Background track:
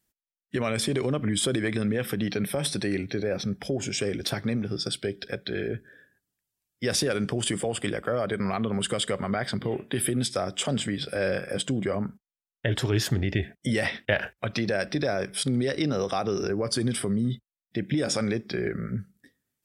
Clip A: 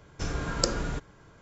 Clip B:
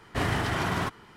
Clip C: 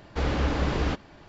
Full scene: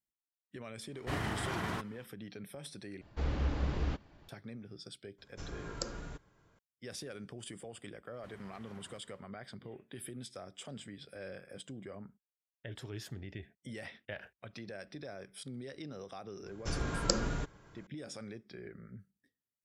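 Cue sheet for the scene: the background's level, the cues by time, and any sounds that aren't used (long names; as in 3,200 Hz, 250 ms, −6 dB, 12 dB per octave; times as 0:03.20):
background track −19 dB
0:00.92: mix in B −9 dB, fades 0.05 s
0:03.01: overwrite with C −13 dB + low-shelf EQ 170 Hz +8.5 dB
0:05.18: mix in A −13 dB
0:08.09: mix in B −15.5 dB, fades 0.10 s + downward compressor 3 to 1, threshold −44 dBFS
0:16.46: mix in A −4 dB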